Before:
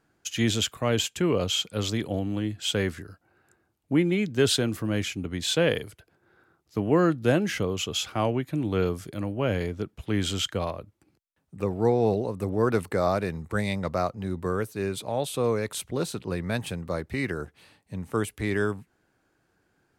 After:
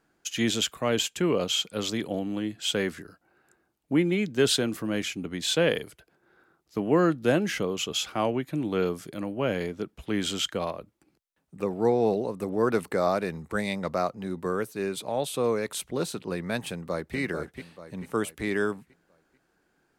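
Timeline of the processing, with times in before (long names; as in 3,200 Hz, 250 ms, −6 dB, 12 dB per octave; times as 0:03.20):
0:16.69–0:17.17: delay throw 440 ms, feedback 45%, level −7.5 dB
whole clip: parametric band 95 Hz −14.5 dB 0.62 octaves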